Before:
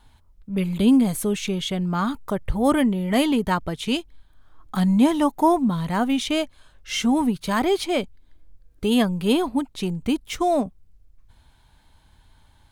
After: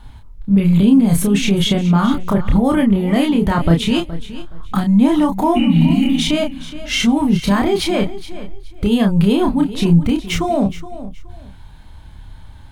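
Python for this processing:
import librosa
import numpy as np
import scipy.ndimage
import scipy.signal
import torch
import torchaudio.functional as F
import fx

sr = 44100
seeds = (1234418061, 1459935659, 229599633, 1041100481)

p1 = fx.spec_repair(x, sr, seeds[0], start_s=5.58, length_s=0.56, low_hz=220.0, high_hz=3000.0, source='after')
p2 = fx.over_compress(p1, sr, threshold_db=-26.0, ratio=-0.5)
p3 = p1 + (p2 * librosa.db_to_amplitude(2.0))
p4 = fx.bass_treble(p3, sr, bass_db=7, treble_db=-5)
p5 = fx.doubler(p4, sr, ms=30.0, db=-3.5)
p6 = p5 + fx.echo_feedback(p5, sr, ms=420, feedback_pct=22, wet_db=-15.0, dry=0)
y = p6 * librosa.db_to_amplitude(-1.0)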